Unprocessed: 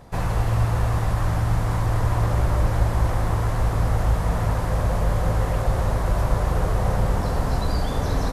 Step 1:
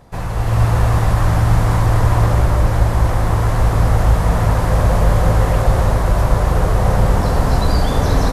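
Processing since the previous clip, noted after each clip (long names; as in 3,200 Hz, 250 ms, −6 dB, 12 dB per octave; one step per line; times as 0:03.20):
automatic gain control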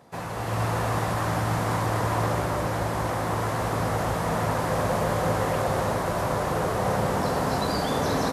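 high-pass filter 180 Hz 12 dB per octave
level −4.5 dB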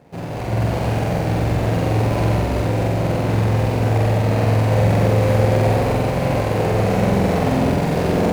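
running median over 41 samples
flutter between parallel walls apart 7.9 metres, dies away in 1.2 s
level +6.5 dB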